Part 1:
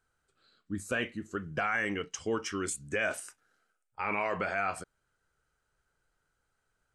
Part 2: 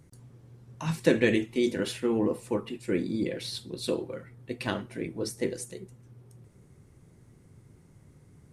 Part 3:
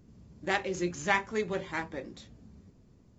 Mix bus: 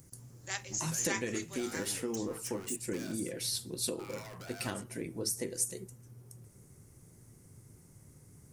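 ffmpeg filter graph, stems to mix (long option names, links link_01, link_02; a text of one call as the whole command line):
ffmpeg -i stem1.wav -i stem2.wav -i stem3.wav -filter_complex "[0:a]alimiter=level_in=1dB:limit=-24dB:level=0:latency=1:release=14,volume=-1dB,aeval=exprs='0.0266*(abs(mod(val(0)/0.0266+3,4)-2)-1)':channel_layout=same,volume=-12dB[link_01];[1:a]acompressor=threshold=-32dB:ratio=4,volume=-2.5dB[link_02];[2:a]highpass=frequency=1300:poles=1,highshelf=frequency=4500:gain=11,volume=-9dB[link_03];[link_01][link_02][link_03]amix=inputs=3:normalize=0,equalizer=frequency=110:width_type=o:width=0.27:gain=2.5,aexciter=amount=4.6:drive=3.1:freq=5100" out.wav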